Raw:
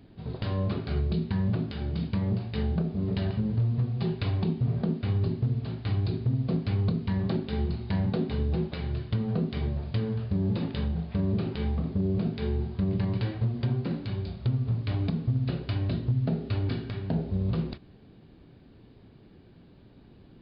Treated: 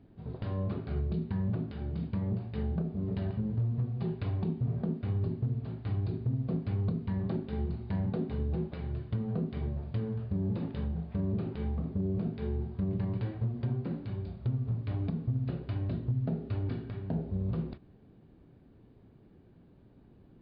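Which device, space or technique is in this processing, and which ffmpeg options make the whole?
through cloth: -af "highshelf=frequency=3100:gain=-17,volume=-4.5dB"

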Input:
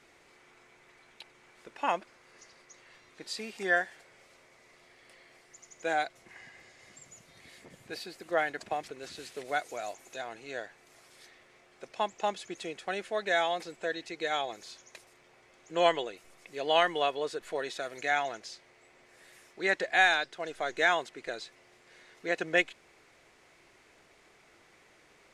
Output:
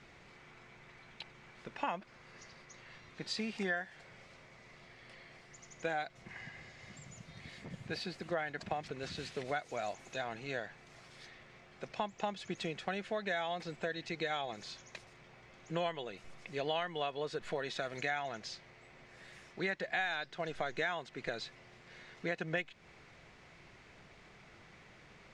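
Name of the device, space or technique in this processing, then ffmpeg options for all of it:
jukebox: -af "lowpass=5200,lowshelf=frequency=240:width_type=q:width=1.5:gain=7.5,acompressor=threshold=-36dB:ratio=5,volume=2.5dB"

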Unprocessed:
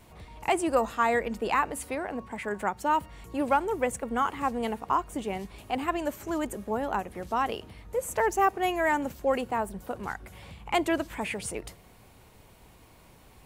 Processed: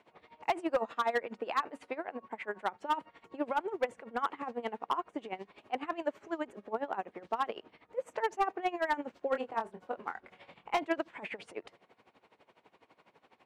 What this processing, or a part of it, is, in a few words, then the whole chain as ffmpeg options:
helicopter radio: -filter_complex "[0:a]highpass=320,lowpass=2900,aeval=exprs='val(0)*pow(10,-18*(0.5-0.5*cos(2*PI*12*n/s))/20)':channel_layout=same,asoftclip=type=hard:threshold=-22dB,asettb=1/sr,asplit=3[link_01][link_02][link_03];[link_01]atrim=end=9.304[link_04];[link_02]atrim=start=9.3:end=10.83,asetpts=PTS-STARTPTS,afade=type=in:duration=0.004:curve=qsin,afade=type=out:start_time=1.526:duration=0.004:curve=qsin,asplit=2[link_05][link_06];[link_06]adelay=23,volume=-7dB[link_07];[link_05][link_07]amix=inputs=2:normalize=0,atrim=end_sample=67473[link_08];[link_03]atrim=start=10.826[link_09];[link_04][link_08]acrossfade=duration=0.004:curve1=hsin:curve2=qsin[link_10];[link_10][link_09]acrossfade=duration=0.004:curve1=qsin:curve2=hsin"

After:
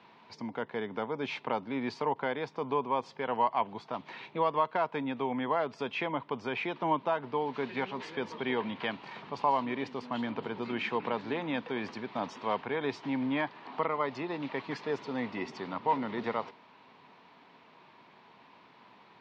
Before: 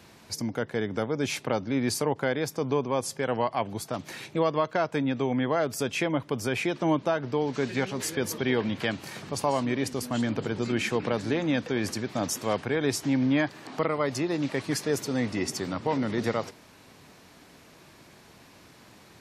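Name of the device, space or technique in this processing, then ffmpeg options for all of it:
kitchen radio: -af "highpass=220,equalizer=frequency=320:width_type=q:width=4:gain=-6,equalizer=frequency=560:width_type=q:width=4:gain=-4,equalizer=frequency=960:width_type=q:width=4:gain=9,equalizer=frequency=1600:width_type=q:width=4:gain=-3,lowpass=frequency=3600:width=0.5412,lowpass=frequency=3600:width=1.3066,volume=-3.5dB"

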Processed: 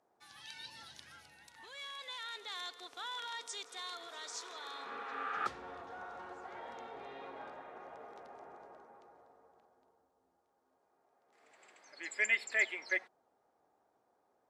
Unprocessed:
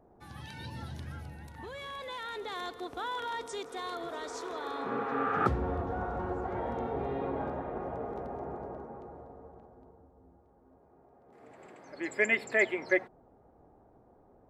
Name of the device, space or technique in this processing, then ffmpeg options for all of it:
piezo pickup straight into a mixer: -af "lowpass=5900,aderivative,volume=8dB"

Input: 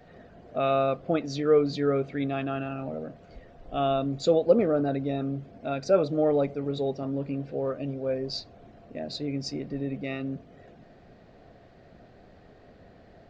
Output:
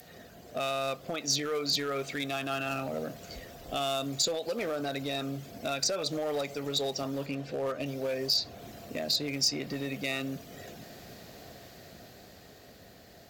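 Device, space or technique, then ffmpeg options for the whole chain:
FM broadcast chain: -filter_complex "[0:a]asettb=1/sr,asplit=3[link_01][link_02][link_03];[link_01]atrim=end=7.264[link_04];[link_02]atrim=start=7.26:end=7.86,asetpts=PTS-STARTPTS,afade=type=in:duration=0.004:curve=qsin,afade=type=out:start_time=0.596:duration=0.004:curve=qsin,aemphasis=mode=reproduction:type=50kf[link_05];[link_03]atrim=start=7.856[link_06];[link_04][link_05]acrossfade=duration=0.004:curve1=hsin:curve2=qsin[link_07];[link_07][link_06]acrossfade=duration=0.004:curve1=qsin:curve2=hsin,highpass=52,dynaudnorm=framelen=210:gausssize=17:maxgain=6dB,acrossover=split=620|1700|3900[link_08][link_09][link_10][link_11];[link_08]acompressor=threshold=-33dB:ratio=4[link_12];[link_09]acompressor=threshold=-27dB:ratio=4[link_13];[link_10]acompressor=threshold=-40dB:ratio=4[link_14];[link_11]acompressor=threshold=-45dB:ratio=4[link_15];[link_12][link_13][link_14][link_15]amix=inputs=4:normalize=0,aemphasis=mode=production:type=75fm,alimiter=limit=-23dB:level=0:latency=1:release=106,asoftclip=type=hard:threshold=-26dB,lowpass=frequency=15000:width=0.5412,lowpass=frequency=15000:width=1.3066,aemphasis=mode=production:type=75fm"

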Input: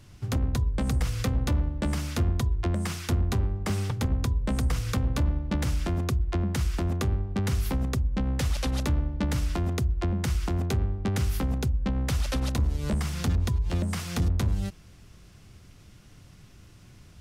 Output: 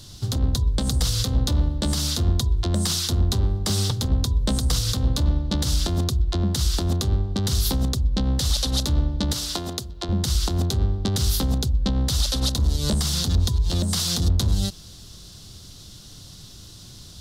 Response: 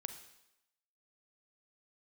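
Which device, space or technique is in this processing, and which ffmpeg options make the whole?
over-bright horn tweeter: -filter_complex "[0:a]asettb=1/sr,asplit=3[link_01][link_02][link_03];[link_01]atrim=end=9.334[link_04];[link_02]atrim=start=9.33:end=10.09,asetpts=PTS-STARTPTS,afade=type=in:duration=0.004:curve=qsin,afade=type=out:start_time=0.756:duration=0.004:curve=qsin,highpass=frequency=370:poles=1[link_05];[link_03]atrim=start=10.086[link_06];[link_04][link_05]acrossfade=duration=0.004:curve1=hsin:curve2=qsin[link_07];[link_07][link_06]acrossfade=duration=0.004:curve1=qsin:curve2=hsin,highshelf=frequency=3000:width_type=q:width=3:gain=8.5,alimiter=limit=-18dB:level=0:latency=1:release=128,volume=6dB"

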